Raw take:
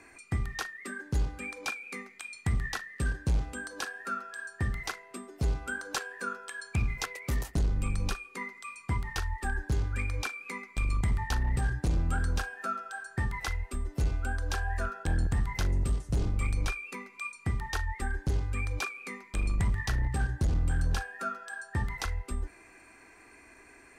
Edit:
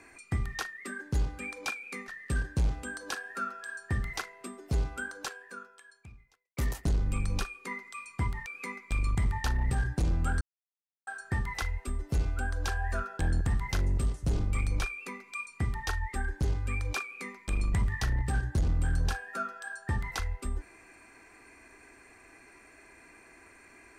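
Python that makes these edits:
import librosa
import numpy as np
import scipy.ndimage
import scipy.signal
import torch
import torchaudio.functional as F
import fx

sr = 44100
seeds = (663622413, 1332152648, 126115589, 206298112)

y = fx.edit(x, sr, fx.cut(start_s=2.08, length_s=0.7),
    fx.fade_out_span(start_s=5.57, length_s=1.7, curve='qua'),
    fx.cut(start_s=9.16, length_s=1.16),
    fx.silence(start_s=12.27, length_s=0.66), tone=tone)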